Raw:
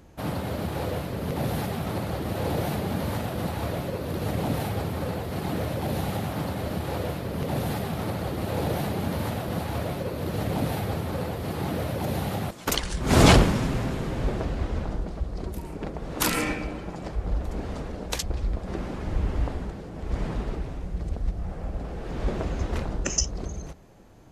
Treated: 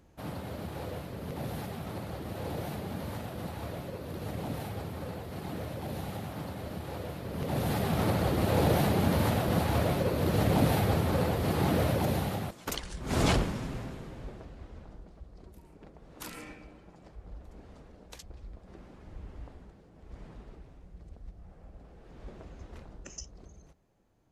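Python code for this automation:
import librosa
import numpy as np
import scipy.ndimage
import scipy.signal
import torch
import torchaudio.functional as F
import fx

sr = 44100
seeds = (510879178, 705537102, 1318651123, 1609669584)

y = fx.gain(x, sr, db=fx.line((7.09, -9.0), (7.99, 2.0), (11.9, 2.0), (12.8, -10.5), (13.76, -10.5), (14.5, -18.5)))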